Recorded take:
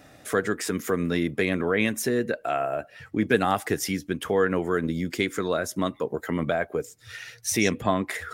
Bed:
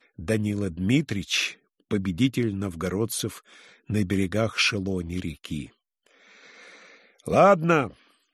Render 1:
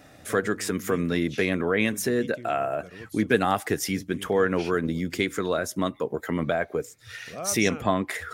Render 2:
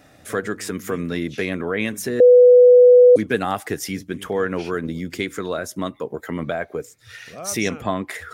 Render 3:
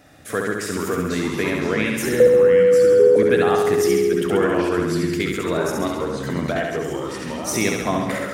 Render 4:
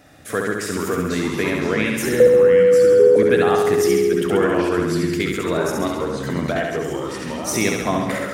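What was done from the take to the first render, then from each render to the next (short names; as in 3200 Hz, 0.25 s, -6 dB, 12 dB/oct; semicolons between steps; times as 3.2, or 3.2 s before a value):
add bed -18.5 dB
2.2–3.16 bleep 494 Hz -6 dBFS
flutter echo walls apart 11.6 m, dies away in 1.1 s; echoes that change speed 0.377 s, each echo -3 st, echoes 2, each echo -6 dB
gain +1 dB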